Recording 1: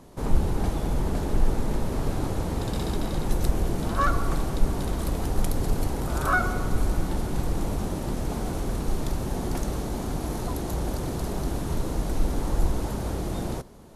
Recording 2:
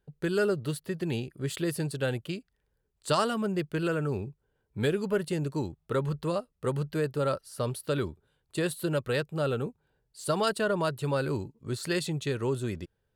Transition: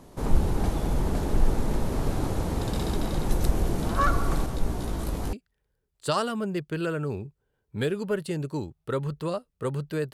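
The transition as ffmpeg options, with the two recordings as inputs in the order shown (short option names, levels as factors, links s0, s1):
-filter_complex "[0:a]asettb=1/sr,asplit=3[s0][s1][s2];[s0]atrim=end=4.464[s3];[s1]atrim=start=4.46:end=5.33,asetpts=PTS-STARTPTS,afade=t=in:d=0.004:c=qsin,afade=t=out:st=0.866:d=0.004:c=qsin,flanger=delay=16:depth=6.8:speed=0.33[s4];[s2]atrim=start=5.326[s5];[s3][s4]acrossfade=d=0.004:c1=hsin:c2=qsin[s6];[s6][s5]acrossfade=d=0.004:c1=qsin:c2=hsin,apad=whole_dur=10.13,atrim=end=10.13,atrim=end=5.332[s7];[1:a]atrim=start=2.348:end=7.15[s8];[s7][s8]acrossfade=d=0.004:c1=hsin:c2=hsin"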